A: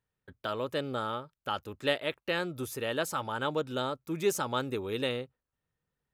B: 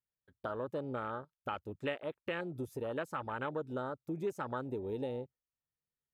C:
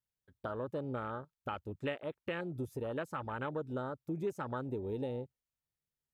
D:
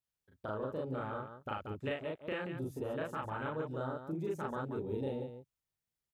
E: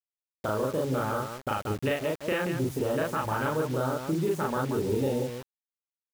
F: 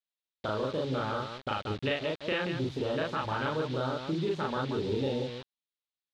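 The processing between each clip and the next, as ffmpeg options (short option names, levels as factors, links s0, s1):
-af "afwtdn=0.0178,acompressor=threshold=0.0112:ratio=2.5,volume=1.19"
-af "lowshelf=f=200:g=6.5,volume=0.841"
-af "aecho=1:1:37.9|180.8:1|0.447,volume=0.708"
-filter_complex "[0:a]asplit=2[s0][s1];[s1]alimiter=level_in=2.82:limit=0.0631:level=0:latency=1:release=117,volume=0.355,volume=1[s2];[s0][s2]amix=inputs=2:normalize=0,acrusher=bits=7:mix=0:aa=0.000001,volume=1.88"
-af "lowpass=f=3800:t=q:w=3.3,volume=0.668"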